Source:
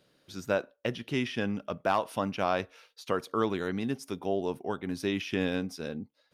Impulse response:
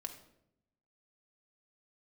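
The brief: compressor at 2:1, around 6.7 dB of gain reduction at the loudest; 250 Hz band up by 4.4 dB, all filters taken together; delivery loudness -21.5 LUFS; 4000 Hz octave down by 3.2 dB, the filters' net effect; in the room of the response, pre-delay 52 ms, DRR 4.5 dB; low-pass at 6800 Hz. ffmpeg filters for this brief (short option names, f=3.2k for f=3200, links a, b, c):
-filter_complex "[0:a]lowpass=6.8k,equalizer=f=250:t=o:g=5.5,equalizer=f=4k:t=o:g=-4,acompressor=threshold=-34dB:ratio=2,asplit=2[a][b];[1:a]atrim=start_sample=2205,adelay=52[c];[b][c]afir=irnorm=-1:irlink=0,volume=-2dB[d];[a][d]amix=inputs=2:normalize=0,volume=13dB"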